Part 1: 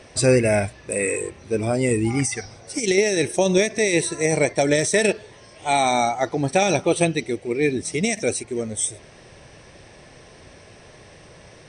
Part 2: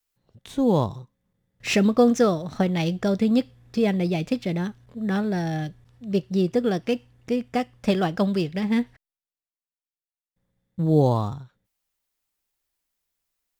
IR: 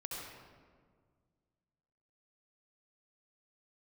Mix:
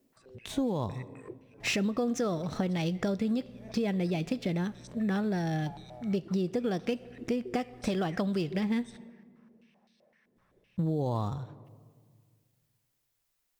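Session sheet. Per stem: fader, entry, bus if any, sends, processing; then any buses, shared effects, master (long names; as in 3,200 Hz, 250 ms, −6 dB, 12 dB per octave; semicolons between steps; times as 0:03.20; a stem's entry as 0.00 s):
−8.5 dB, 0.00 s, send −21.5 dB, noise gate −33 dBFS, range −13 dB; compressor whose output falls as the input rises −31 dBFS, ratio −1; band-pass on a step sequencer 7.8 Hz 260–4,000 Hz
+1.0 dB, 0.00 s, send −22 dB, brickwall limiter −14.5 dBFS, peak gain reduction 6.5 dB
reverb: on, RT60 1.8 s, pre-delay 62 ms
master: downward compressor 4 to 1, threshold −28 dBFS, peak gain reduction 10 dB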